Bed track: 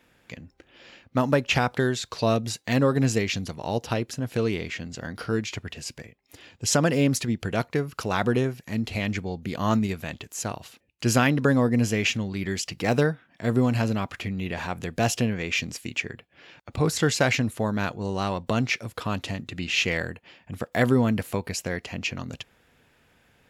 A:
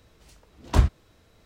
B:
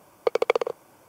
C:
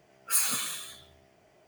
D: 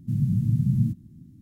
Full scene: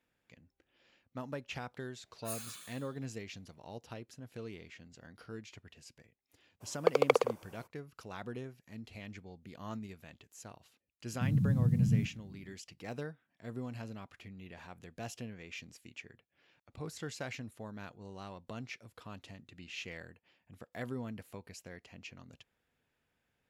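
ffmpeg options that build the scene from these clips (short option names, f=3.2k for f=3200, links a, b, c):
-filter_complex "[0:a]volume=-19.5dB[a];[3:a]atrim=end=1.67,asetpts=PTS-STARTPTS,volume=-17.5dB,afade=t=in:d=0.004:c=hsin,afade=t=out:st=1.666:d=0.004:c=hsin,adelay=1950[b];[2:a]atrim=end=1.08,asetpts=PTS-STARTPTS,volume=-4dB,afade=t=in:d=0.02,afade=t=out:st=1.06:d=0.02,adelay=6600[c];[4:a]atrim=end=1.41,asetpts=PTS-STARTPTS,volume=-6dB,afade=t=in:d=0.004:c=hsin,afade=t=out:st=1.406:d=0.004:c=hsin,adelay=11130[d];[a][b][c][d]amix=inputs=4:normalize=0"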